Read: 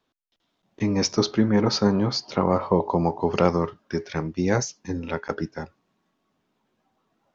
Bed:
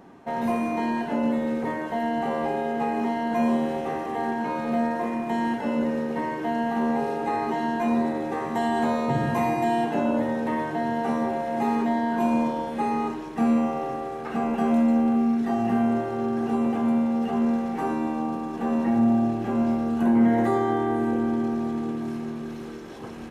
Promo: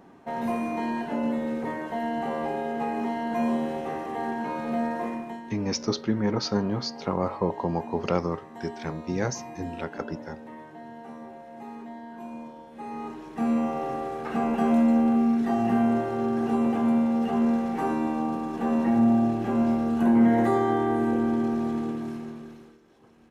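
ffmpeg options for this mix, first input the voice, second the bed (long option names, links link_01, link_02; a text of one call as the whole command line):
ffmpeg -i stem1.wav -i stem2.wav -filter_complex "[0:a]adelay=4700,volume=-5.5dB[link_01];[1:a]volume=13.5dB,afade=type=out:start_time=5.08:duration=0.34:silence=0.211349,afade=type=in:start_time=12.7:duration=1.31:silence=0.149624,afade=type=out:start_time=21.75:duration=1.03:silence=0.112202[link_02];[link_01][link_02]amix=inputs=2:normalize=0" out.wav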